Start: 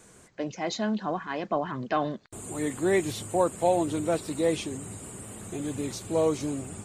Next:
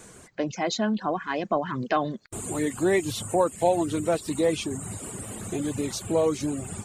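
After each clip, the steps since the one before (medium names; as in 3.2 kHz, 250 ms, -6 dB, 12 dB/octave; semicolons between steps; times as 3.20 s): in parallel at +1.5 dB: compression, threshold -33 dBFS, peak gain reduction 14 dB; on the sum: reverb removal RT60 0.67 s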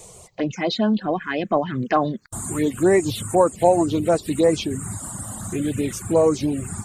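touch-sensitive phaser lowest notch 240 Hz, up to 3.4 kHz, full sweep at -19.5 dBFS; trim +6.5 dB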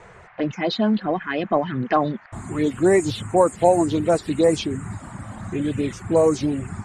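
level-controlled noise filter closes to 2.2 kHz, open at -12.5 dBFS; band noise 660–2100 Hz -50 dBFS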